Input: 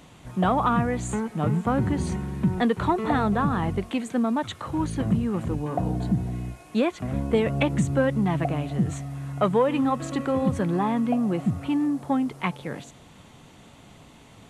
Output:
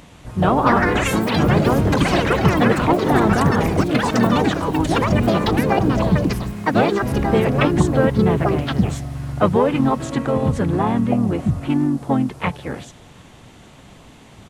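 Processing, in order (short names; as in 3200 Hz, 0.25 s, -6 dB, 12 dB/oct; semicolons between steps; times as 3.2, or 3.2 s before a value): harmoniser -12 st -6 dB, -3 st -5 dB, +3 st -14 dB; echoes that change speed 0.383 s, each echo +7 st, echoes 3; gain +3.5 dB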